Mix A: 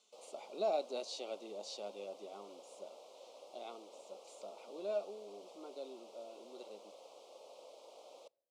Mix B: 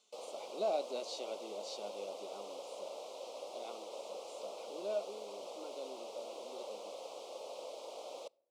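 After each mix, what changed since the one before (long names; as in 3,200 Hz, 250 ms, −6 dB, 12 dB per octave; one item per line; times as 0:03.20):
background +9.5 dB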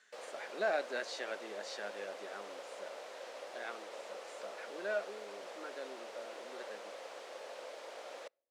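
background: send −9.5 dB
master: remove Butterworth band-reject 1,700 Hz, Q 0.98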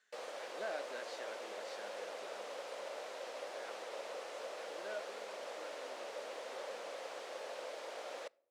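speech −9.0 dB
background: send +10.5 dB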